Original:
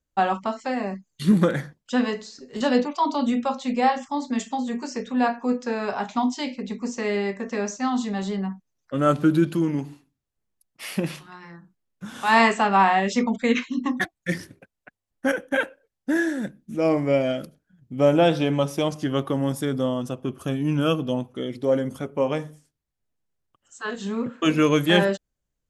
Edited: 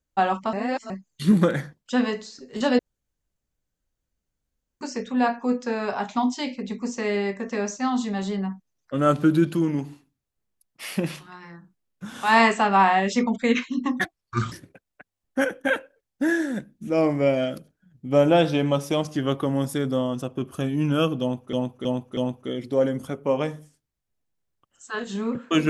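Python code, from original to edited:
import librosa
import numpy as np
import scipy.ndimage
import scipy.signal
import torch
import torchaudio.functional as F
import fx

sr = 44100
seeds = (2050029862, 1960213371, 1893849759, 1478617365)

y = fx.edit(x, sr, fx.reverse_span(start_s=0.53, length_s=0.37),
    fx.room_tone_fill(start_s=2.79, length_s=2.02),
    fx.speed_span(start_s=14.13, length_s=0.26, speed=0.67),
    fx.repeat(start_s=21.08, length_s=0.32, count=4), tone=tone)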